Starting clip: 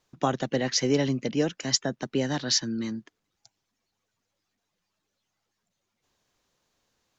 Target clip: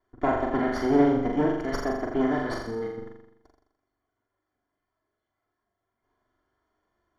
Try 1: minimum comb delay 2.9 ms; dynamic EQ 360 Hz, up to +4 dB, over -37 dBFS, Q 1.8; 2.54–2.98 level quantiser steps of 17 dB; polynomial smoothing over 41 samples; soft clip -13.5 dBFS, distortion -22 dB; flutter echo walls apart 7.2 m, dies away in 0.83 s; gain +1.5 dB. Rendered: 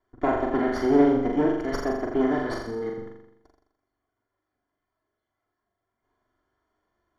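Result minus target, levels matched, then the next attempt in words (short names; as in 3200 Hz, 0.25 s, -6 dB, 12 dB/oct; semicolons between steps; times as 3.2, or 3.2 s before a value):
125 Hz band -3.5 dB
minimum comb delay 2.9 ms; dynamic EQ 150 Hz, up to +4 dB, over -37 dBFS, Q 1.8; 2.54–2.98 level quantiser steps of 17 dB; polynomial smoothing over 41 samples; soft clip -13.5 dBFS, distortion -24 dB; flutter echo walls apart 7.2 m, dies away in 0.83 s; gain +1.5 dB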